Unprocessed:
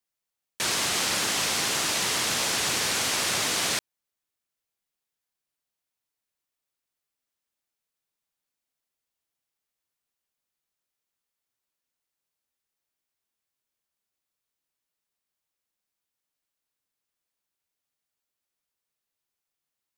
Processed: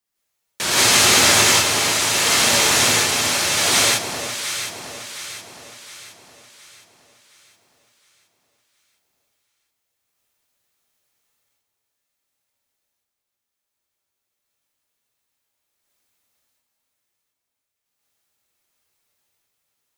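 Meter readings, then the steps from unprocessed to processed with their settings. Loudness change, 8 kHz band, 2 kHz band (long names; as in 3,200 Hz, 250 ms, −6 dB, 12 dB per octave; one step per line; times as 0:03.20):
+9.5 dB, +10.5 dB, +10.5 dB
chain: sample-and-hold tremolo 1.4 Hz, depth 80%
delay that swaps between a low-pass and a high-pass 358 ms, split 1,100 Hz, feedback 67%, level −6 dB
reverb whose tail is shaped and stops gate 210 ms rising, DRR −7.5 dB
level +7 dB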